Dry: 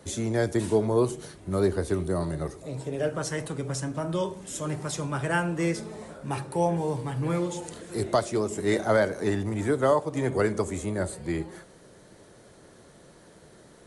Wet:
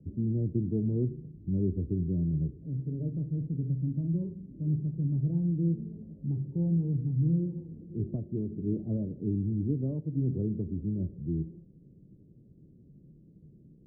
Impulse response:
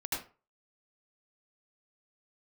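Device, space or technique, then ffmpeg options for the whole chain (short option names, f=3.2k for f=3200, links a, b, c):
the neighbour's flat through the wall: -af "lowpass=f=280:w=0.5412,lowpass=f=280:w=1.3066,equalizer=f=150:t=o:w=0.43:g=5.5"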